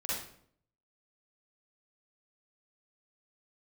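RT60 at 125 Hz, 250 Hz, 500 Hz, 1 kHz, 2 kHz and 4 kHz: 0.80, 0.75, 0.70, 0.55, 0.50, 0.45 s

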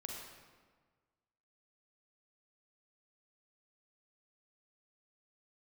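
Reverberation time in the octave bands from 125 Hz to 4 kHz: 1.7, 1.6, 1.5, 1.5, 1.3, 1.0 s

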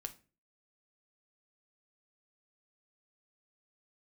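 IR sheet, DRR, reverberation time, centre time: 7.0 dB, 0.35 s, 5 ms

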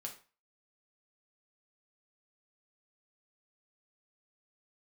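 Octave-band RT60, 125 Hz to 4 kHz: 0.35, 0.35, 0.35, 0.35, 0.35, 0.30 s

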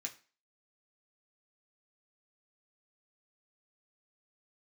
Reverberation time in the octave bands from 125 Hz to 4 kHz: 0.30, 0.40, 0.35, 0.35, 0.40, 0.35 s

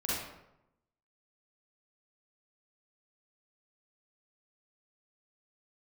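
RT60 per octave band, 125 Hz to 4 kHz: 1.0, 0.95, 0.90, 0.85, 0.70, 0.55 s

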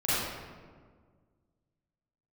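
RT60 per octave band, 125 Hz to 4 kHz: 2.2, 2.1, 1.8, 1.5, 1.2, 0.90 s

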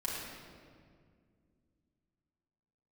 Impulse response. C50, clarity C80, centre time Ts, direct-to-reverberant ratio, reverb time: -1.5 dB, 0.5 dB, 0.11 s, -6.0 dB, 2.1 s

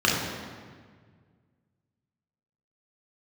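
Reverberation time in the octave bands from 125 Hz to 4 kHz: 2.6, 2.1, 1.8, 1.6, 1.5, 1.2 s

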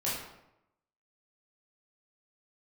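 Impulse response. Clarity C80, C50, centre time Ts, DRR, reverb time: 4.5 dB, 1.0 dB, 61 ms, -8.5 dB, 0.85 s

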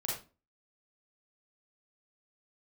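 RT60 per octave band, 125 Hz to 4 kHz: 0.40, 0.45, 0.35, 0.30, 0.25, 0.25 s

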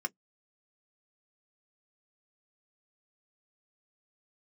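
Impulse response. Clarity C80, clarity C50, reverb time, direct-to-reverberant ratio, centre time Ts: 58.0 dB, 41.0 dB, not exponential, 6.0 dB, 3 ms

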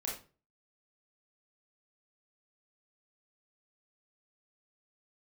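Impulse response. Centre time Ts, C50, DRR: 36 ms, 5.0 dB, -4.0 dB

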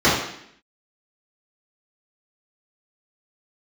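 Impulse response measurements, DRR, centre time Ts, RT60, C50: -11.0 dB, 52 ms, 0.70 s, 2.0 dB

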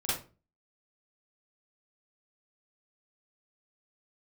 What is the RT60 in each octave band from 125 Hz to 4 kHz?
0.50, 0.45, 0.35, 0.30, 0.30, 0.25 s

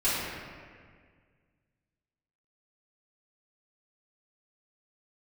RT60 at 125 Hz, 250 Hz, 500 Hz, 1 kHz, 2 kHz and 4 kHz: 2.4, 2.1, 1.9, 1.7, 1.8, 1.3 s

